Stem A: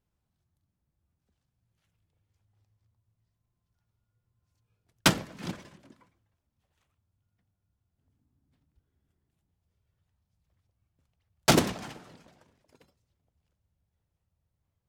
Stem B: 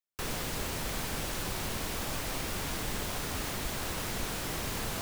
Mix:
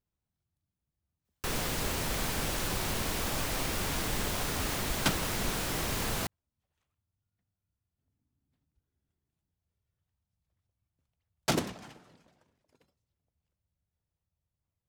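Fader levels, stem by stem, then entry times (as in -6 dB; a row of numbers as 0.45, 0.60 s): -7.5, +2.5 dB; 0.00, 1.25 s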